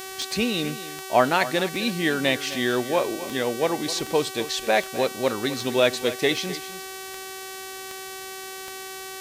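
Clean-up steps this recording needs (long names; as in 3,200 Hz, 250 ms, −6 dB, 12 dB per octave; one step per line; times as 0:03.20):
click removal
hum removal 381.1 Hz, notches 40
downward expander −29 dBFS, range −21 dB
echo removal 258 ms −14.5 dB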